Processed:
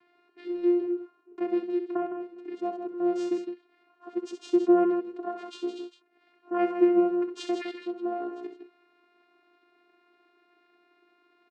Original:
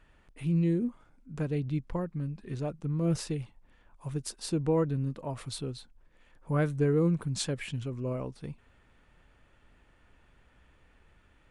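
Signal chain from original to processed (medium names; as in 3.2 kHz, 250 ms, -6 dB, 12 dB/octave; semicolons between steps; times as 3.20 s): low-pass 4.9 kHz 12 dB/octave; vocoder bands 8, saw 351 Hz; loudspeakers at several distances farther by 22 m -8 dB, 55 m -8 dB; trim +4.5 dB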